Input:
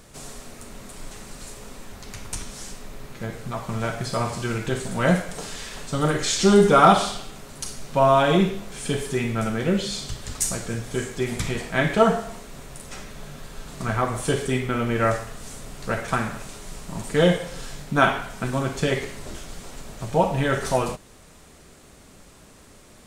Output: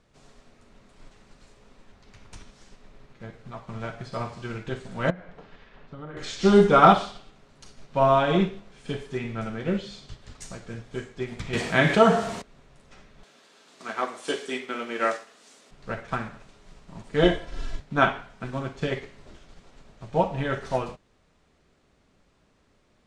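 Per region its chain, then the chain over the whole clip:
5.10–6.17 s: low-pass 2.4 kHz + compression, threshold -26 dBFS
11.53–12.42 s: high-pass 76 Hz + treble shelf 5.9 kHz +12 dB + level flattener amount 50%
13.23–15.71 s: high-pass 250 Hz 24 dB/octave + treble shelf 3 kHz +11.5 dB
17.23–17.80 s: bass shelf 210 Hz +8.5 dB + comb 3 ms, depth 73%
whole clip: low-pass 4.5 kHz 12 dB/octave; upward expansion 1.5:1, over -39 dBFS

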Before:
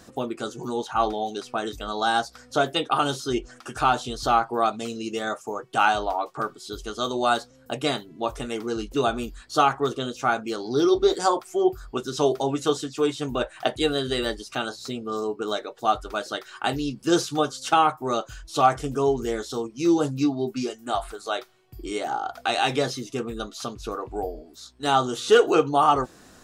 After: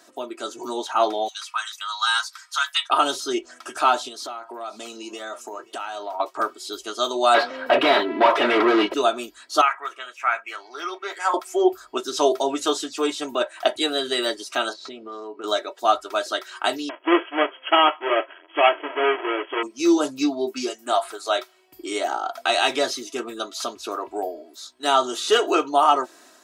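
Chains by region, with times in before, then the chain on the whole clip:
1.28–2.90 s: steep high-pass 1 kHz 48 dB/octave + comb 6.5 ms, depth 34%
4.08–6.20 s: high-pass 99 Hz + compression, threshold -33 dBFS + delay 529 ms -21 dB
7.34–8.94 s: overdrive pedal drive 36 dB, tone 7.6 kHz, clips at -9.5 dBFS + distance through air 420 m
9.61–11.34 s: high-pass 1.2 kHz + resonant high shelf 3 kHz -10 dB, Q 3
14.73–15.44 s: low-pass 3.3 kHz + compression 3:1, threshold -35 dBFS
16.89–19.63 s: square wave that keeps the level + brick-wall FIR band-pass 280–3400 Hz
whole clip: high-pass 440 Hz 12 dB/octave; comb 3.1 ms, depth 61%; level rider gain up to 6.5 dB; trim -2 dB

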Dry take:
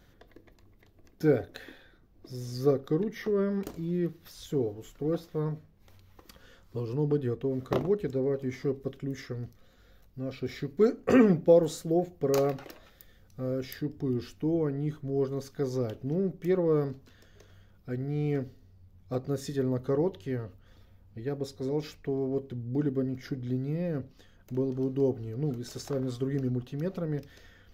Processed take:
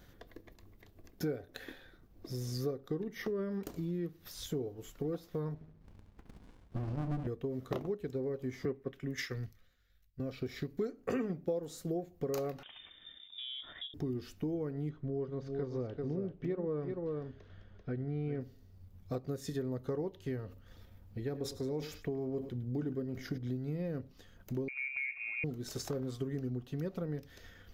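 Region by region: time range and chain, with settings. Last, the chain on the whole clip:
5.54–7.27 s: boxcar filter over 5 samples + flutter echo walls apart 11.9 m, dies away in 0.64 s + sliding maximum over 65 samples
8.65–10.20 s: peaking EQ 1.9 kHz +9.5 dB 1.3 oct + three bands expanded up and down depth 100%
12.63–13.94 s: compression 4:1, threshold -45 dBFS + frequency inversion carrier 3.6 kHz
14.89–18.41 s: distance through air 240 m + delay 389 ms -7 dB
20.46–23.38 s: delay 105 ms -15.5 dB + decay stretcher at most 110 dB/s
24.68–25.44 s: high-pass 120 Hz 24 dB/octave + compression 2.5:1, threshold -33 dBFS + frequency inversion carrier 2.6 kHz
whole clip: treble shelf 10 kHz +5 dB; transient shaper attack +1 dB, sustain -3 dB; compression 4:1, threshold -36 dBFS; trim +1 dB

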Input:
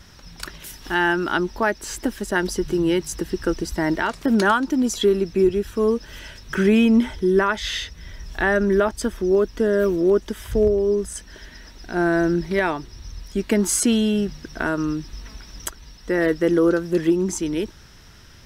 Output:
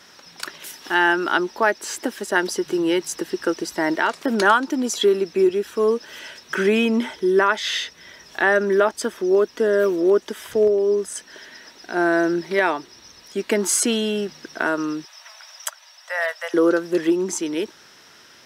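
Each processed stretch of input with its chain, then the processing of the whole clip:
15.05–16.54 s: steep high-pass 560 Hz 96 dB/octave + band-stop 4.2 kHz, Q 16
whole clip: high-pass 350 Hz 12 dB/octave; treble shelf 10 kHz -4 dB; trim +3 dB

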